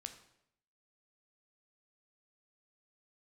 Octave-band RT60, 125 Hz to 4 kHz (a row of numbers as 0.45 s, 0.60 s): 0.85 s, 0.80 s, 0.80 s, 0.70 s, 0.70 s, 0.65 s